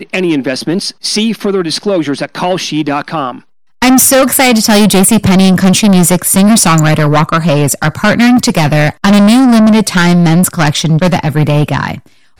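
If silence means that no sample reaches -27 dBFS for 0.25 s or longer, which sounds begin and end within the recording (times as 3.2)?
3.82–11.99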